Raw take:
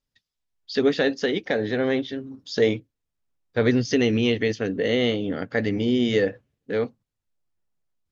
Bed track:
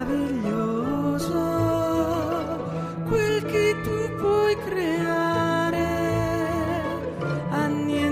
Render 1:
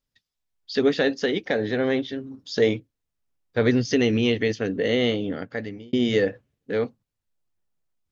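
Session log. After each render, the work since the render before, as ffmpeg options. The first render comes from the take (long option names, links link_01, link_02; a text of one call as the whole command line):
ffmpeg -i in.wav -filter_complex "[0:a]asplit=2[link_01][link_02];[link_01]atrim=end=5.93,asetpts=PTS-STARTPTS,afade=type=out:start_time=5.2:duration=0.73[link_03];[link_02]atrim=start=5.93,asetpts=PTS-STARTPTS,afade=type=in:duration=0.004:curve=hsin[link_04];[link_03][link_04]concat=n=2:v=0:a=1" out.wav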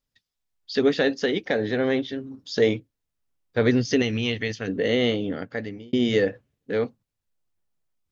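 ffmpeg -i in.wav -filter_complex "[0:a]asettb=1/sr,asplit=3[link_01][link_02][link_03];[link_01]atrim=end=4.024[link_04];[link_02]atrim=start=4.02:end=4.68,asetpts=PTS-STARTPTS,afade=type=in:duration=0.004:curve=qsin,afade=type=out:start_time=0.656:duration=0.004:curve=qsin,equalizer=frequency=360:width=0.82:gain=-8.5[link_05];[link_03]atrim=start=4.676[link_06];[link_04][link_05]acrossfade=duration=0.004:curve1=hsin:curve2=qsin[link_07];[link_07][link_06]acrossfade=duration=0.004:curve1=qsin:curve2=hsin" out.wav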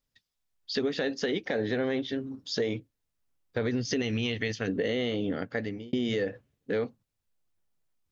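ffmpeg -i in.wav -af "alimiter=limit=-14.5dB:level=0:latency=1:release=98,acompressor=threshold=-25dB:ratio=6" out.wav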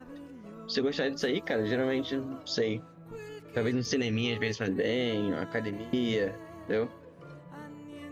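ffmpeg -i in.wav -i bed.wav -filter_complex "[1:a]volume=-21dB[link_01];[0:a][link_01]amix=inputs=2:normalize=0" out.wav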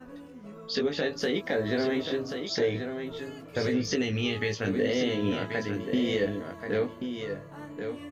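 ffmpeg -i in.wav -filter_complex "[0:a]asplit=2[link_01][link_02];[link_02]adelay=20,volume=-5dB[link_03];[link_01][link_03]amix=inputs=2:normalize=0,aecho=1:1:1083:0.422" out.wav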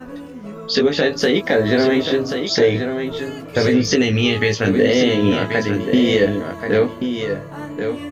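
ffmpeg -i in.wav -af "volume=12dB" out.wav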